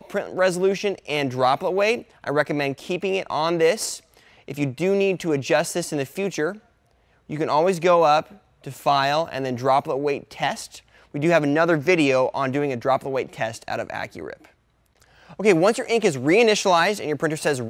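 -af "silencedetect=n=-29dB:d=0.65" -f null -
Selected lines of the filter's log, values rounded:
silence_start: 6.52
silence_end: 7.30 | silence_duration: 0.78
silence_start: 14.33
silence_end: 15.39 | silence_duration: 1.06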